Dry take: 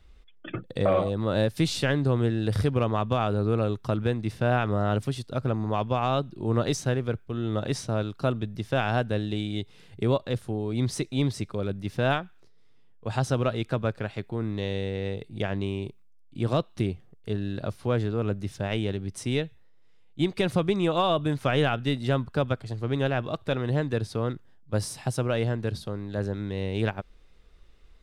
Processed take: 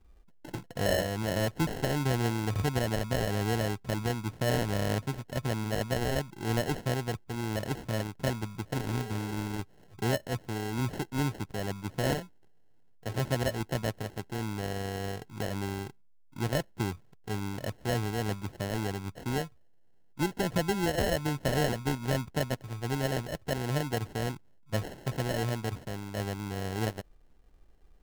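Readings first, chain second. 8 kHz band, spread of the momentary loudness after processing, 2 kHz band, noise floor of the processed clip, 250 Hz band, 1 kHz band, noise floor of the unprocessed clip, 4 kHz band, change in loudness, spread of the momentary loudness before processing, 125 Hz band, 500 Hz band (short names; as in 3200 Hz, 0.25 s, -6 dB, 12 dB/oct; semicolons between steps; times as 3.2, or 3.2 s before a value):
+1.5 dB, 8 LU, -2.0 dB, -57 dBFS, -4.5 dB, -4.5 dB, -52 dBFS, -2.5 dB, -4.5 dB, 8 LU, -4.5 dB, -5.5 dB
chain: spectral repair 8.76–9.53, 350–1200 Hz after; sample-and-hold 37×; gain -4.5 dB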